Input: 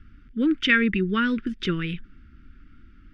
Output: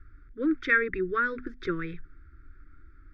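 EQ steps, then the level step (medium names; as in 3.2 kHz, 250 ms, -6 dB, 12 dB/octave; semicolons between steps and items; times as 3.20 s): low-pass 3.5 kHz 12 dB/octave; hum notches 50/100/150/200/250 Hz; static phaser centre 790 Hz, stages 6; 0.0 dB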